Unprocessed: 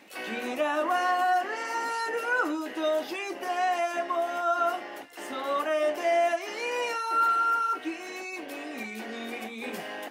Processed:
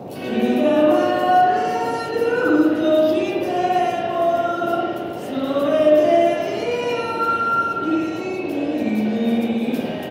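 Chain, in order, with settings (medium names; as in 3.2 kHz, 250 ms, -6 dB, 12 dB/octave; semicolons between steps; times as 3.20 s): ten-band graphic EQ 250 Hz +4 dB, 1 kHz -11 dB, 2 kHz -12 dB, 8 kHz -7 dB; delay 378 ms -15.5 dB; spring tank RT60 1.2 s, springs 56 ms, chirp 60 ms, DRR -7.5 dB; band noise 100–710 Hz -40 dBFS; 6.63–8.94 s: treble shelf 11 kHz -6.5 dB; trim +6.5 dB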